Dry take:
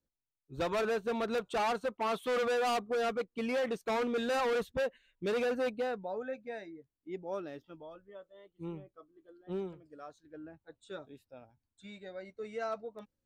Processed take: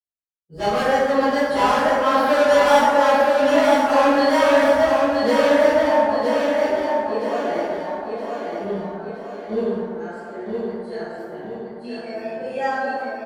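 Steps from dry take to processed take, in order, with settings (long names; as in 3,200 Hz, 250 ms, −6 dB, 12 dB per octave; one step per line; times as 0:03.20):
phase-vocoder pitch shift without resampling +3 semitones
downward expander −58 dBFS
on a send: repeating echo 969 ms, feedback 45%, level −4 dB
on the sum: dense smooth reverb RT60 1.9 s, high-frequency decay 0.45×, DRR −10 dB
level +6 dB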